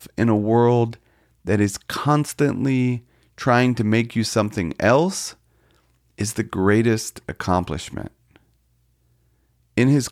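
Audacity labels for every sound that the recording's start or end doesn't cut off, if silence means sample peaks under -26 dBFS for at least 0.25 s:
1.470000	2.970000	sound
3.410000	5.290000	sound
6.200000	8.070000	sound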